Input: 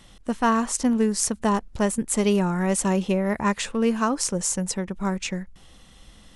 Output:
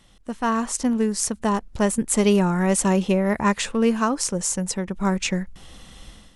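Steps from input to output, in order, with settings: level rider gain up to 12 dB; trim -5 dB

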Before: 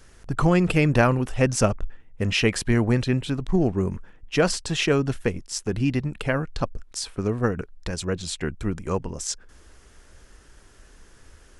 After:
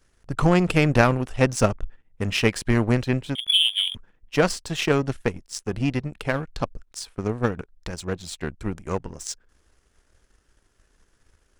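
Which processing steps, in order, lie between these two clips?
3.35–3.95 s: frequency inversion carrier 3.4 kHz; power-law waveshaper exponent 1.4; trim +4 dB

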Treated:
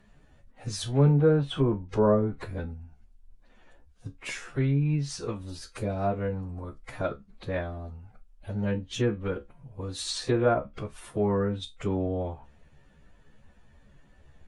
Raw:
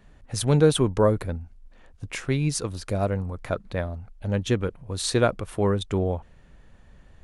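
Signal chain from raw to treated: plain phase-vocoder stretch 2×; feedback comb 70 Hz, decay 0.17 s, harmonics all, mix 80%; low-pass that closes with the level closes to 1.5 kHz, closed at -22 dBFS; trim +2 dB

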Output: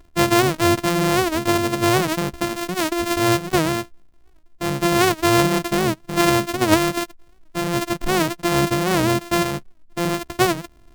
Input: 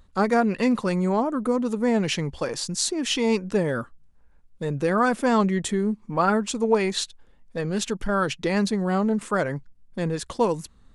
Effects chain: sorted samples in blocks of 128 samples; warped record 78 rpm, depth 160 cents; trim +4 dB

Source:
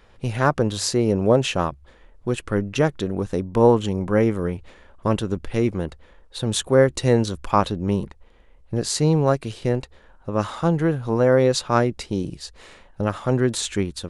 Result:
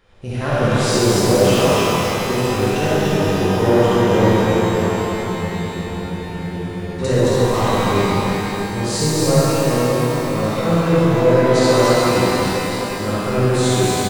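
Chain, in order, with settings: saturation -12 dBFS, distortion -14 dB; on a send: loudspeakers at several distances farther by 24 m -1 dB, 100 m -2 dB; on the sum: spectral freeze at 4.84 s, 2.17 s; pitch-shifted reverb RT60 3.7 s, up +12 st, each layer -8 dB, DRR -8 dB; trim -5.5 dB

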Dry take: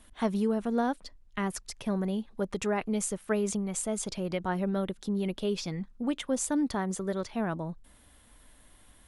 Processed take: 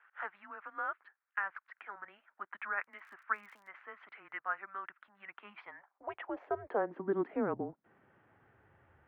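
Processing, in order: mistuned SSB -200 Hz 210–2300 Hz; 2.81–3.67 s: crackle 27 per s -> 100 per s -51 dBFS; high-pass sweep 1.4 kHz -> 81 Hz, 5.24–8.94 s; trim -1.5 dB

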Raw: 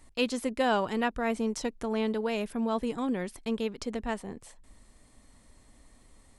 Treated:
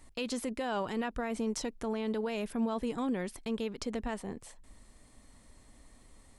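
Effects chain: peak limiter -25 dBFS, peak gain reduction 10 dB

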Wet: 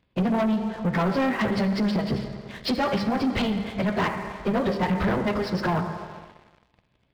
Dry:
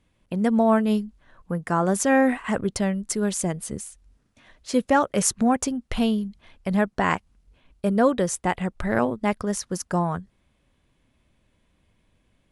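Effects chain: high-pass 44 Hz 12 dB/octave; dynamic bell 110 Hz, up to +4 dB, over -47 dBFS, Q 2.5; compression 8:1, threshold -29 dBFS, peak gain reduction 15 dB; resampled via 11.025 kHz; plain phase-vocoder stretch 0.57×; reverberation RT60 2.1 s, pre-delay 4 ms, DRR 7 dB; waveshaping leveller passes 3; trim +5.5 dB

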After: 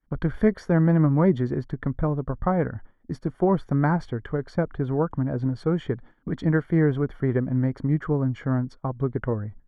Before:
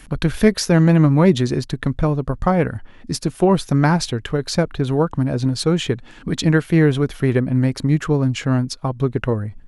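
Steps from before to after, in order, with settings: Savitzky-Golay filter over 41 samples; expander -30 dBFS; trim -6 dB

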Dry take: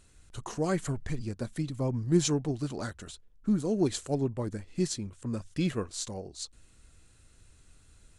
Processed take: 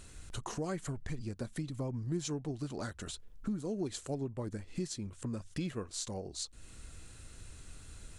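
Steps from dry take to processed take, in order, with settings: compression 3:1, threshold -48 dBFS, peak gain reduction 21.5 dB; trim +8 dB

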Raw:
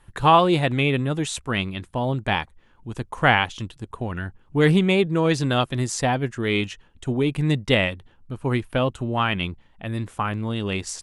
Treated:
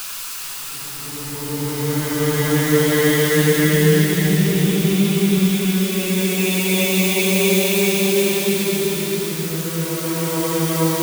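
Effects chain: zero-crossing glitches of -8.5 dBFS; Paulstretch 14×, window 0.25 s, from 4.41 s

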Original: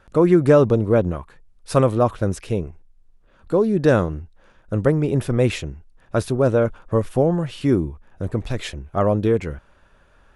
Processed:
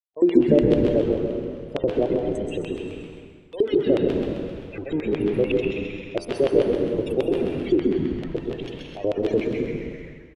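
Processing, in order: jump at every zero crossing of -26.5 dBFS; static phaser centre 510 Hz, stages 4; gate -26 dBFS, range -10 dB; bit crusher 5-bit; loudest bins only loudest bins 32; LFO band-pass square 6.8 Hz 320–3100 Hz; de-hum 85.21 Hz, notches 17; frequency-shifting echo 131 ms, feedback 50%, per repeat -98 Hz, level -5 dB; plate-style reverb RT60 1.6 s, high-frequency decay 0.8×, pre-delay 110 ms, DRR 2.5 dB; tape noise reduction on one side only encoder only; trim +4.5 dB

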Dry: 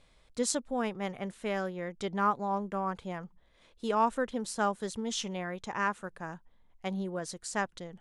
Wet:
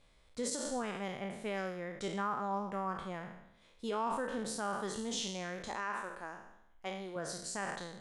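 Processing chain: spectral sustain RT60 0.81 s; 5.68–7.16 s: peaking EQ 150 Hz -13.5 dB 0.89 oct; peak limiter -21.5 dBFS, peak gain reduction 10 dB; trim -5 dB

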